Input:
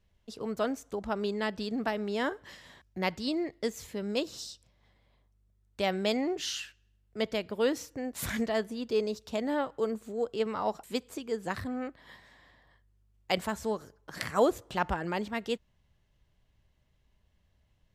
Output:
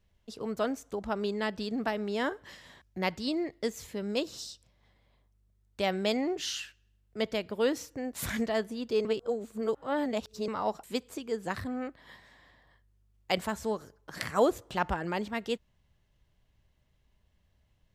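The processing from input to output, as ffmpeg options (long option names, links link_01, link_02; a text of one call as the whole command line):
ffmpeg -i in.wav -filter_complex "[0:a]asplit=3[link_01][link_02][link_03];[link_01]atrim=end=9.052[link_04];[link_02]atrim=start=9.048:end=10.482,asetpts=PTS-STARTPTS,areverse[link_05];[link_03]atrim=start=10.478[link_06];[link_04][link_05]acrossfade=duration=0.004:curve1=hsin:curve2=hsin[link_07];[link_07][link_06]acrossfade=duration=0.004:curve1=hsin:curve2=hsin" out.wav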